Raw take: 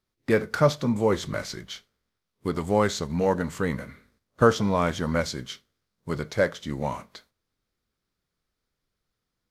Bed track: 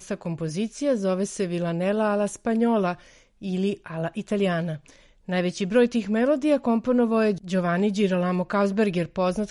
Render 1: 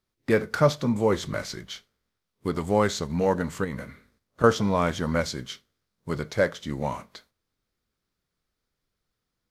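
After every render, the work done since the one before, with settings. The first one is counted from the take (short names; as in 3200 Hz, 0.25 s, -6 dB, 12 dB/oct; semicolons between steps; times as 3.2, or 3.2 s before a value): 3.64–4.44 compressor, threshold -27 dBFS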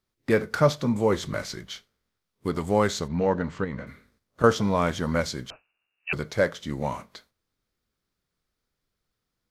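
3.08–3.87 air absorption 160 m; 5.5–6.13 inverted band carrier 2800 Hz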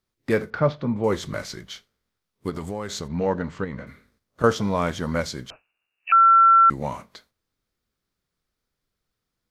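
0.5–1.04 air absorption 310 m; 2.49–3.08 compressor, threshold -26 dBFS; 6.12–6.7 bleep 1350 Hz -10.5 dBFS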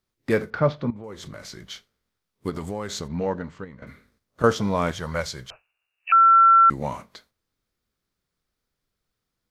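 0.9–1.67 compressor, threshold -35 dBFS; 3.01–3.82 fade out, to -14 dB; 4.91–6.33 bell 260 Hz -14 dB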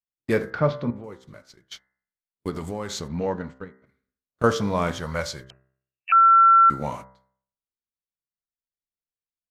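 gate -37 dBFS, range -25 dB; de-hum 64.92 Hz, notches 32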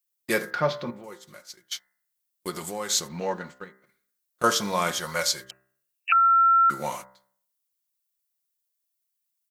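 RIAA curve recording; comb 5.6 ms, depth 47%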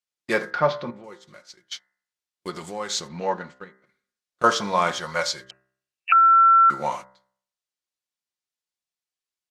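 dynamic EQ 900 Hz, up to +6 dB, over -34 dBFS, Q 0.89; LPF 5600 Hz 12 dB/oct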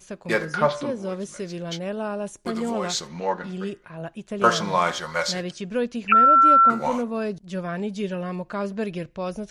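add bed track -6 dB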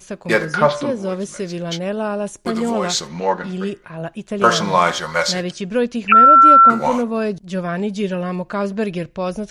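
gain +6.5 dB; limiter -1 dBFS, peak gain reduction 3 dB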